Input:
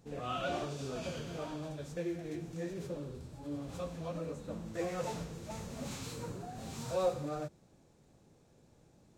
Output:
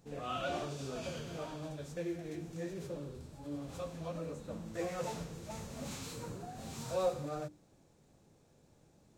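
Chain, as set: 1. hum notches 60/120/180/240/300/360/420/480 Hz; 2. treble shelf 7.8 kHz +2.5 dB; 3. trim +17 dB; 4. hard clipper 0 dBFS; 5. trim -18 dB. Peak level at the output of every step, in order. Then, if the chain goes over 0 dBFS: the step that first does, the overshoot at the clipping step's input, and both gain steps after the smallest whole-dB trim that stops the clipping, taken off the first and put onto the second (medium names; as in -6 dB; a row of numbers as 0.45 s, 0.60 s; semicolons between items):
-21.5 dBFS, -21.5 dBFS, -4.5 dBFS, -4.5 dBFS, -22.5 dBFS; nothing clips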